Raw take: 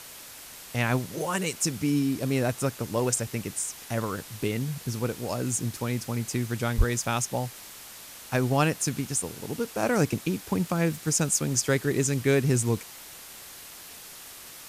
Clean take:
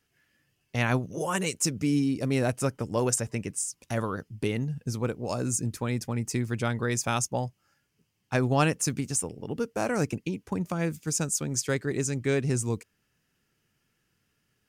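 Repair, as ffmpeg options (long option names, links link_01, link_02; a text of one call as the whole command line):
ffmpeg -i in.wav -filter_complex "[0:a]adeclick=threshold=4,asplit=3[link_01][link_02][link_03];[link_01]afade=type=out:start_time=6.77:duration=0.02[link_04];[link_02]highpass=frequency=140:width=0.5412,highpass=frequency=140:width=1.3066,afade=type=in:start_time=6.77:duration=0.02,afade=type=out:start_time=6.89:duration=0.02[link_05];[link_03]afade=type=in:start_time=6.89:duration=0.02[link_06];[link_04][link_05][link_06]amix=inputs=3:normalize=0,afwtdn=0.0071,asetnsamples=nb_out_samples=441:pad=0,asendcmd='9.83 volume volume -3.5dB',volume=0dB" out.wav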